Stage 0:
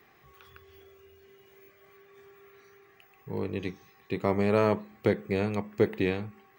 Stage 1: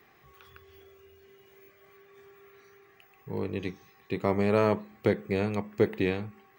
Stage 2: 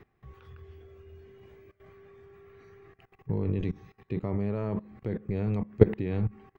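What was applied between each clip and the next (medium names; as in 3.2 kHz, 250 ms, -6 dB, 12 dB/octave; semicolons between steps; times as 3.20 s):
no audible change
level held to a coarse grid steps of 20 dB; RIAA curve playback; trim +3.5 dB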